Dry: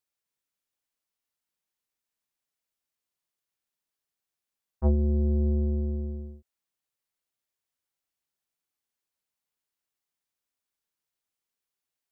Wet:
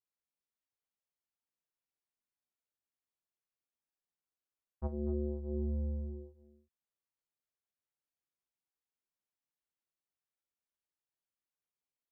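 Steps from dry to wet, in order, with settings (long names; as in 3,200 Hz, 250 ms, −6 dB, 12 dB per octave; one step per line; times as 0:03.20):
single-tap delay 243 ms −12 dB
chorus effect 0.68 Hz, delay 17.5 ms, depth 4.2 ms
one half of a high-frequency compander decoder only
level −4 dB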